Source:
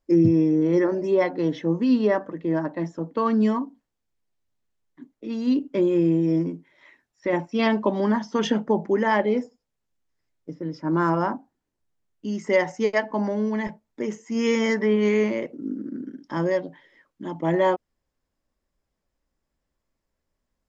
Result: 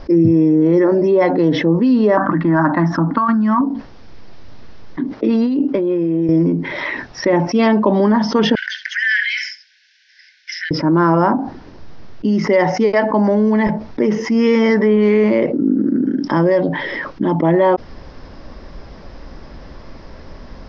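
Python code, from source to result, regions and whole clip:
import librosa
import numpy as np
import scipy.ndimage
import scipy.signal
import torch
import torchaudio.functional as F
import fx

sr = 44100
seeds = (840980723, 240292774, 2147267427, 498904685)

y = fx.chain(x, sr, fx.curve_eq(hz=(300.0, 460.0, 700.0, 1400.0, 2500.0), db=(0, -19, 1, 11, -4)),
    fx.over_compress(threshold_db=-25.0, ratio=-1.0), at=(2.17, 3.61))
y = fx.chain(y, sr, fx.highpass(hz=210.0, slope=6),
    fx.high_shelf(hz=5600.0, db=-8.5),
    fx.over_compress(threshold_db=-32.0, ratio=-1.0), at=(5.11, 6.29))
y = fx.chain(y, sr, fx.cheby1_highpass(hz=1500.0, order=10),
    fx.room_flutter(wall_m=11.9, rt60_s=0.26), at=(8.55, 10.71))
y = scipy.signal.sosfilt(scipy.signal.butter(12, 5500.0, 'lowpass', fs=sr, output='sos'), y)
y = fx.peak_eq(y, sr, hz=3200.0, db=-6.0, octaves=1.8)
y = fx.env_flatten(y, sr, amount_pct=70)
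y = y * librosa.db_to_amplitude(4.5)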